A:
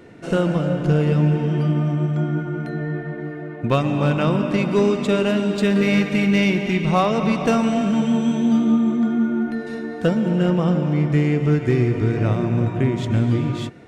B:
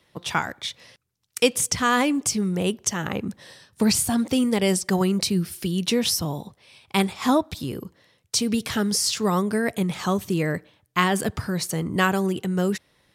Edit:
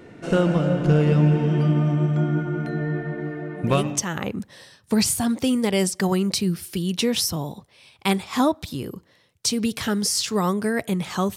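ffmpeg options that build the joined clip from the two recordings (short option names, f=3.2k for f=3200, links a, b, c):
-filter_complex "[0:a]apad=whole_dur=11.36,atrim=end=11.36,atrim=end=4.04,asetpts=PTS-STARTPTS[a];[1:a]atrim=start=2.43:end=10.25,asetpts=PTS-STARTPTS[b];[a][b]acrossfade=d=0.5:c1=qsin:c2=qsin"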